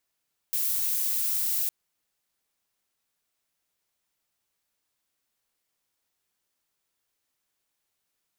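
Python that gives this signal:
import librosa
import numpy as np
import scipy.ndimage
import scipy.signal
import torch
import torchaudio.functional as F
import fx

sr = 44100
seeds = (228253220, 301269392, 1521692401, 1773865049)

y = fx.noise_colour(sr, seeds[0], length_s=1.16, colour='violet', level_db=-27.0)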